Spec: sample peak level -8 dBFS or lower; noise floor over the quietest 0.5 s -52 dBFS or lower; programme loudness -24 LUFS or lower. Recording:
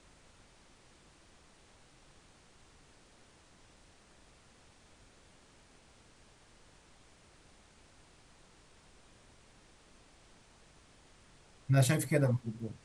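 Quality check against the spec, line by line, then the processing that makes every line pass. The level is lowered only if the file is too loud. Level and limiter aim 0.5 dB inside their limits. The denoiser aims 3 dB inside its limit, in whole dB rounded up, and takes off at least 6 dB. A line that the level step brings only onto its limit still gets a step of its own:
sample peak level -15.0 dBFS: OK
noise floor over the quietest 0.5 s -62 dBFS: OK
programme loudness -30.5 LUFS: OK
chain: none

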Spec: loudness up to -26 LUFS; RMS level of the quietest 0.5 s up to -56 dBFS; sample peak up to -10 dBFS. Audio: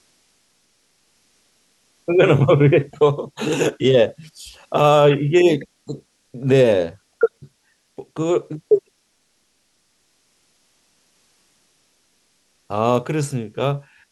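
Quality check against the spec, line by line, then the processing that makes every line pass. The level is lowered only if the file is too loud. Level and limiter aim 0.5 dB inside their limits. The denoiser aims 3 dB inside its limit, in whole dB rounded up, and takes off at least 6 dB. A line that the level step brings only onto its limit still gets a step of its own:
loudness -18.0 LUFS: fail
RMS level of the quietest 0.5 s -65 dBFS: OK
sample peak -4.0 dBFS: fail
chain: gain -8.5 dB

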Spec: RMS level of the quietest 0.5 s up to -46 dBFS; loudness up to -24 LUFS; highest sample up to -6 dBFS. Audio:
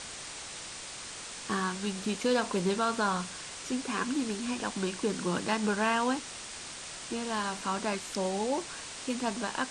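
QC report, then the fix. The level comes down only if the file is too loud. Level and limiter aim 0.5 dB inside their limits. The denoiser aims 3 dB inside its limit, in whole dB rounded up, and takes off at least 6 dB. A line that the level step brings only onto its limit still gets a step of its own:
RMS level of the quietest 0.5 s -43 dBFS: fail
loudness -32.5 LUFS: OK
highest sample -15.0 dBFS: OK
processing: denoiser 6 dB, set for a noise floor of -43 dBFS

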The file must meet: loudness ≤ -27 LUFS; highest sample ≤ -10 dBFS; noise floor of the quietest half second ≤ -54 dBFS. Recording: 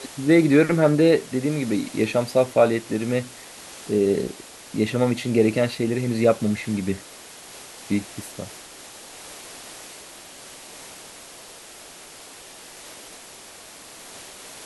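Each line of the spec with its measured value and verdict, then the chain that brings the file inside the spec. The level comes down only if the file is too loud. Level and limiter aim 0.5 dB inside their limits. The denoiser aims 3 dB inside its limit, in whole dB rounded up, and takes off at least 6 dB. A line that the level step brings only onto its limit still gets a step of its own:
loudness -21.5 LUFS: fail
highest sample -5.0 dBFS: fail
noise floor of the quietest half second -43 dBFS: fail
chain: denoiser 8 dB, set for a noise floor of -43 dBFS; gain -6 dB

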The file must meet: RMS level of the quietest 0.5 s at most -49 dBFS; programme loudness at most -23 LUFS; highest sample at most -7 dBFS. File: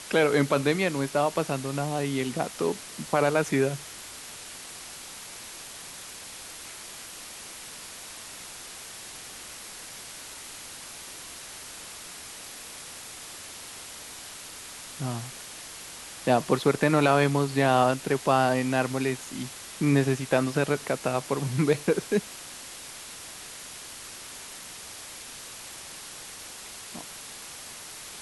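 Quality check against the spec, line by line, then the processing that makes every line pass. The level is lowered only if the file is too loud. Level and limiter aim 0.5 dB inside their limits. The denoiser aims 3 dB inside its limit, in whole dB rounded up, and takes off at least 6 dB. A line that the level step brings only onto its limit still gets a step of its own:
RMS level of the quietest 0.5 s -42 dBFS: fail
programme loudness -29.5 LUFS: OK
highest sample -9.0 dBFS: OK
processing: denoiser 10 dB, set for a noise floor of -42 dBFS

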